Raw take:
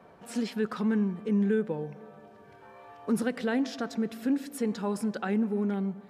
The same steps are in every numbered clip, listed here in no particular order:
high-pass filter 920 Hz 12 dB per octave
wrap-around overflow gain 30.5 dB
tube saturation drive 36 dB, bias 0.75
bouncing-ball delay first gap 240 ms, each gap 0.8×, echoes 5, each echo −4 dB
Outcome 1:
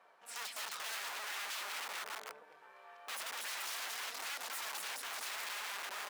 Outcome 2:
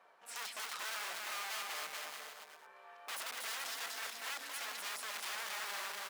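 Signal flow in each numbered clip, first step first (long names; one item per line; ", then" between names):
bouncing-ball delay, then wrap-around overflow, then tube saturation, then high-pass filter
wrap-around overflow, then bouncing-ball delay, then tube saturation, then high-pass filter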